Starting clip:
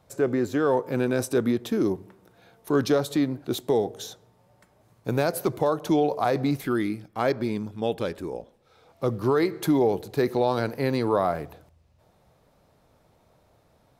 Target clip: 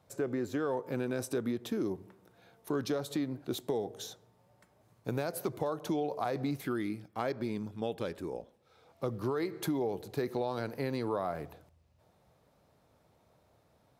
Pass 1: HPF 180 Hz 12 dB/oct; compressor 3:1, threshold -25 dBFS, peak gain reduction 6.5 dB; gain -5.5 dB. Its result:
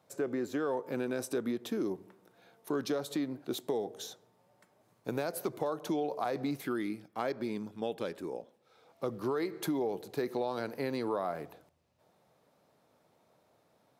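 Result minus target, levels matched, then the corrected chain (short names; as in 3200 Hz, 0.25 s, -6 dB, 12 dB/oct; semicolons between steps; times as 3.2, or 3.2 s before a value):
125 Hz band -5.5 dB
HPF 54 Hz 12 dB/oct; compressor 3:1, threshold -25 dBFS, peak gain reduction 6.5 dB; gain -5.5 dB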